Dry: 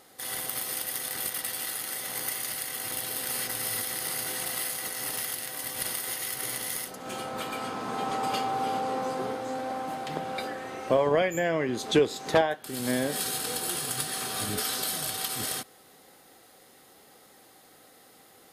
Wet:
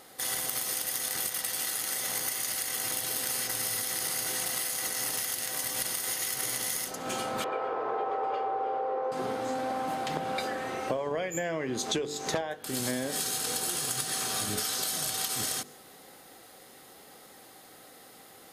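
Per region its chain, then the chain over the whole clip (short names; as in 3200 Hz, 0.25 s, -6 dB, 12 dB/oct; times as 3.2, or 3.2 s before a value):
7.44–9.12 LPF 1600 Hz + resonant low shelf 310 Hz -11 dB, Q 3
whole clip: de-hum 49.03 Hz, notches 10; dynamic EQ 6500 Hz, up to +7 dB, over -51 dBFS, Q 1.9; compressor 12:1, threshold -31 dBFS; gain +3.5 dB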